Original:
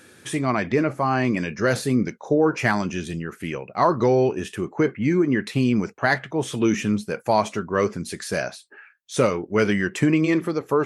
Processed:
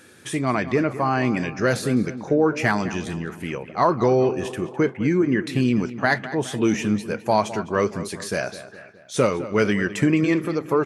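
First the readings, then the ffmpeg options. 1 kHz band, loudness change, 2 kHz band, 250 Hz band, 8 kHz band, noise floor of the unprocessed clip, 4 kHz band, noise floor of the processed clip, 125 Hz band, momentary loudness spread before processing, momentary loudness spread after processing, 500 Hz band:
0.0 dB, 0.0 dB, 0.0 dB, 0.0 dB, 0.0 dB, -52 dBFS, 0.0 dB, -44 dBFS, 0.0 dB, 10 LU, 10 LU, 0.0 dB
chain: -filter_complex "[0:a]asplit=2[s0][s1];[s1]adelay=208,lowpass=f=3700:p=1,volume=0.2,asplit=2[s2][s3];[s3]adelay=208,lowpass=f=3700:p=1,volume=0.53,asplit=2[s4][s5];[s5]adelay=208,lowpass=f=3700:p=1,volume=0.53,asplit=2[s6][s7];[s7]adelay=208,lowpass=f=3700:p=1,volume=0.53,asplit=2[s8][s9];[s9]adelay=208,lowpass=f=3700:p=1,volume=0.53[s10];[s0][s2][s4][s6][s8][s10]amix=inputs=6:normalize=0"

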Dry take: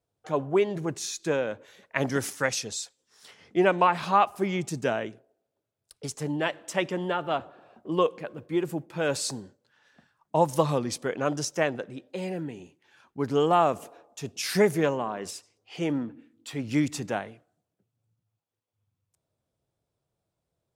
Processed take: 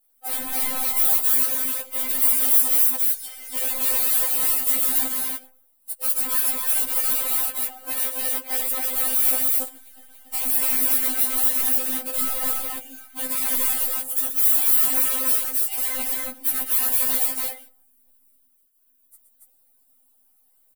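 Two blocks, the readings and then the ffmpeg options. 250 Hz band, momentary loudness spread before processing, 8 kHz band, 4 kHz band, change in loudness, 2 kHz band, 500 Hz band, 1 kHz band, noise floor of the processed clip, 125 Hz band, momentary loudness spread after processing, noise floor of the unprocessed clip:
-9.5 dB, 16 LU, +14.0 dB, +4.5 dB, +9.0 dB, -1.0 dB, -13.0 dB, -7.5 dB, -62 dBFS, under -25 dB, 10 LU, -84 dBFS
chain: -filter_complex "[0:a]highpass=56,highshelf=f=5800:g=8.5,bandreject=f=50:t=h:w=6,bandreject=f=100:t=h:w=6,bandreject=f=150:t=h:w=6,aecho=1:1:6.4:0.54,adynamicequalizer=threshold=0.00316:dfrequency=3100:dqfactor=7.3:tfrequency=3100:tqfactor=7.3:attack=5:release=100:ratio=0.375:range=2:mode=boostabove:tftype=bell,asplit=2[s0][s1];[s1]acompressor=threshold=0.0141:ratio=8,volume=1[s2];[s0][s2]amix=inputs=2:normalize=0,alimiter=limit=0.178:level=0:latency=1:release=29,acrusher=bits=9:dc=4:mix=0:aa=0.000001,aeval=exprs='(mod(23.7*val(0)+1,2)-1)/23.7':c=same,aexciter=amount=7.8:drive=3.3:freq=8600,aecho=1:1:119.5|282.8:0.355|0.891,afftfilt=real='re*3.46*eq(mod(b,12),0)':imag='im*3.46*eq(mod(b,12),0)':win_size=2048:overlap=0.75"

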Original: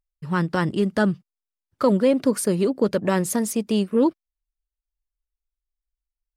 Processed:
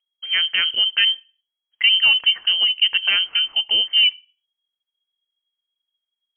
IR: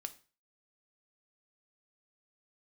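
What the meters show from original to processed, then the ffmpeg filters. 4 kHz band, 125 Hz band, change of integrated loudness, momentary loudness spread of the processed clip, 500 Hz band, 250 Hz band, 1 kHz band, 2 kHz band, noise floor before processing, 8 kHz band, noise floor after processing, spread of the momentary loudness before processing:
+26.5 dB, under -30 dB, +6.0 dB, 5 LU, under -25 dB, under -30 dB, -11.0 dB, +12.0 dB, under -85 dBFS, under -40 dB, -85 dBFS, 5 LU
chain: -filter_complex "[0:a]asplit=2[s0][s1];[1:a]atrim=start_sample=2205,asetrate=41013,aresample=44100[s2];[s1][s2]afir=irnorm=-1:irlink=0,volume=0.473[s3];[s0][s3]amix=inputs=2:normalize=0,lowpass=f=2800:t=q:w=0.5098,lowpass=f=2800:t=q:w=0.6013,lowpass=f=2800:t=q:w=0.9,lowpass=f=2800:t=q:w=2.563,afreqshift=-3300"

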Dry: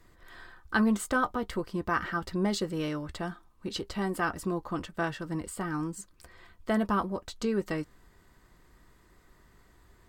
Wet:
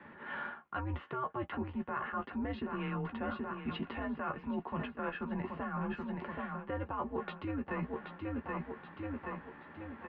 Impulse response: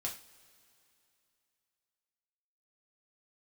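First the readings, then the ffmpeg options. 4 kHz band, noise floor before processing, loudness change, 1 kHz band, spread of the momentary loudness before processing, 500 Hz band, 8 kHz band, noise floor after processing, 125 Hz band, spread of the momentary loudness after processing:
-11.5 dB, -61 dBFS, -8.0 dB, -5.0 dB, 13 LU, -7.0 dB, under -35 dB, -54 dBFS, -4.0 dB, 4 LU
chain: -filter_complex "[0:a]asplit=2[s0][s1];[s1]adelay=14,volume=0.447[s2];[s0][s2]amix=inputs=2:normalize=0,aecho=1:1:777|1554|2331|3108:0.251|0.103|0.0422|0.0173,alimiter=limit=0.0708:level=0:latency=1:release=172,highpass=f=290:t=q:w=0.5412,highpass=f=290:t=q:w=1.307,lowpass=f=2800:t=q:w=0.5176,lowpass=f=2800:t=q:w=0.7071,lowpass=f=2800:t=q:w=1.932,afreqshift=-130,areverse,acompressor=threshold=0.00447:ratio=6,areverse,volume=3.76"

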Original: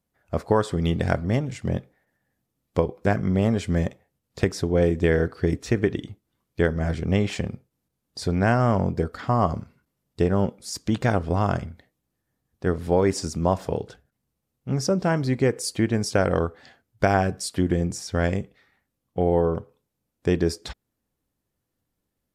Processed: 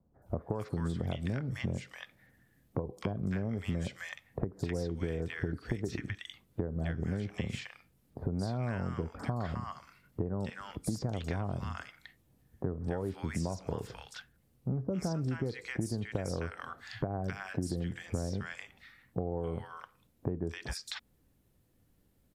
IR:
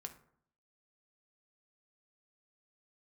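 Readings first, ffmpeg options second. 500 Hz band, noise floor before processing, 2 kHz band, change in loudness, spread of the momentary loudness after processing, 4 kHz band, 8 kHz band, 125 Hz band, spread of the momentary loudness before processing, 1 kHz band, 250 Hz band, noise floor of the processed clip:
-15.0 dB, -80 dBFS, -11.5 dB, -12.5 dB, 10 LU, -10.0 dB, -13.0 dB, -10.0 dB, 10 LU, -15.5 dB, -11.5 dB, -70 dBFS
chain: -filter_complex "[0:a]acrossover=split=83|1100[s0][s1][s2];[s0]acompressor=threshold=0.00562:ratio=4[s3];[s1]acompressor=threshold=0.0398:ratio=4[s4];[s2]acompressor=threshold=0.0158:ratio=4[s5];[s3][s4][s5]amix=inputs=3:normalize=0,lowshelf=f=240:g=6,acrossover=split=1100|5800[s6][s7][s8];[s8]adelay=220[s9];[s7]adelay=260[s10];[s6][s10][s9]amix=inputs=3:normalize=0,acompressor=threshold=0.00631:ratio=2.5,volume=2.11"

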